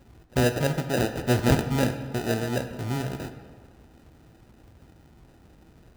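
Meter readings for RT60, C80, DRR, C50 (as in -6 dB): 1.7 s, 11.0 dB, 7.5 dB, 9.0 dB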